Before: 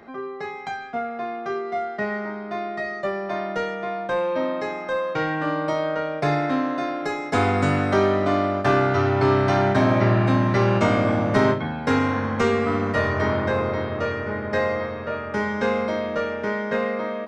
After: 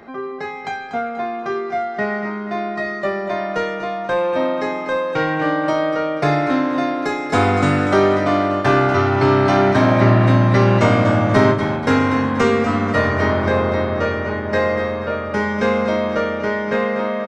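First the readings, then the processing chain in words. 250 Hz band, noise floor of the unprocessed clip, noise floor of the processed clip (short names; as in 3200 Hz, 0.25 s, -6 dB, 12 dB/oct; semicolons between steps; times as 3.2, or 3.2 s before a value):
+5.5 dB, -33 dBFS, -28 dBFS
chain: feedback echo 0.241 s, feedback 38%, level -9.5 dB; gain +4.5 dB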